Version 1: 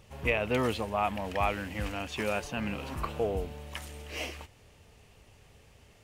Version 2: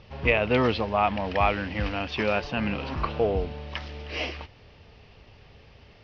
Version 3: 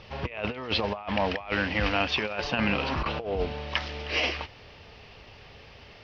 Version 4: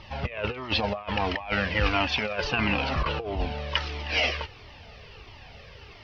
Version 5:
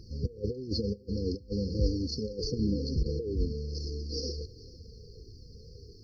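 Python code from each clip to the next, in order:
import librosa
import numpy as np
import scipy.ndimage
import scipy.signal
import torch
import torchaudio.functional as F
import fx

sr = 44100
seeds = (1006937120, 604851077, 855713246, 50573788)

y1 = scipy.signal.sosfilt(scipy.signal.butter(12, 5400.0, 'lowpass', fs=sr, output='sos'), x)
y1 = F.gain(torch.from_numpy(y1), 6.0).numpy()
y2 = fx.low_shelf(y1, sr, hz=400.0, db=-7.5)
y2 = fx.over_compress(y2, sr, threshold_db=-31.0, ratio=-0.5)
y2 = F.gain(torch.from_numpy(y2), 3.5).numpy()
y3 = fx.comb_cascade(y2, sr, direction='falling', hz=1.5)
y3 = F.gain(torch.from_numpy(y3), 6.0).numpy()
y4 = fx.brickwall_bandstop(y3, sr, low_hz=520.0, high_hz=4200.0)
y4 = y4 + 10.0 ** (-21.0 / 20.0) * np.pad(y4, (int(443 * sr / 1000.0), 0))[:len(y4)]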